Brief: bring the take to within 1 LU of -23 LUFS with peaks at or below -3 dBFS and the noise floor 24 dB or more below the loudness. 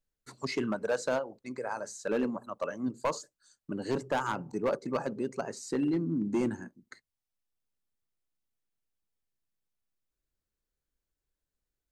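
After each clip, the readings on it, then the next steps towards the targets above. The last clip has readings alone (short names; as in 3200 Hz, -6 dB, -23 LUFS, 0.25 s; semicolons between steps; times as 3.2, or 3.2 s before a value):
clipped 0.8%; flat tops at -23.0 dBFS; loudness -33.5 LUFS; peak -23.0 dBFS; loudness target -23.0 LUFS
-> clip repair -23 dBFS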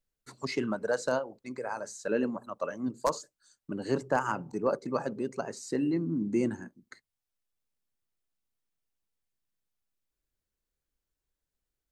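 clipped 0.0%; loudness -32.5 LUFS; peak -14.0 dBFS; loudness target -23.0 LUFS
-> gain +9.5 dB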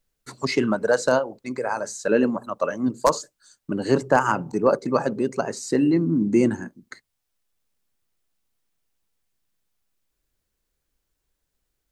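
loudness -23.0 LUFS; peak -4.5 dBFS; noise floor -79 dBFS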